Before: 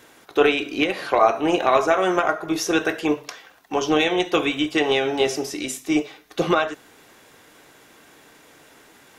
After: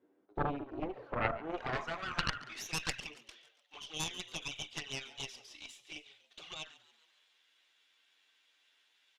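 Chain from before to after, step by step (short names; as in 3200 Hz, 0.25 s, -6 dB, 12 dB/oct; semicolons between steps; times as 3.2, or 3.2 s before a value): 1.57–3 weighting filter ITU-R 468; in parallel at -4.5 dB: soft clip -11 dBFS, distortion -16 dB; on the sum: envelope flanger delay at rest 11.3 ms, full sweep at -11 dBFS; band-pass sweep 320 Hz -> 3300 Hz, 0.65–3.21; added harmonics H 3 -8 dB, 4 -27 dB, 7 -39 dB, 8 -29 dB, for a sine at -4.5 dBFS; on a send: frequency-shifting echo 0.14 s, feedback 55%, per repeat +110 Hz, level -19 dB; on the sum: gain -1.5 dB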